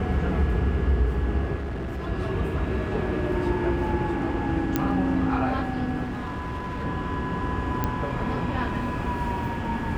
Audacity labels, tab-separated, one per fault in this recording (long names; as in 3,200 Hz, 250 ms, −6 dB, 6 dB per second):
1.550000	2.080000	clipping −28 dBFS
4.760000	4.760000	click −9 dBFS
6.030000	6.850000	clipping −27.5 dBFS
7.840000	7.840000	click −12 dBFS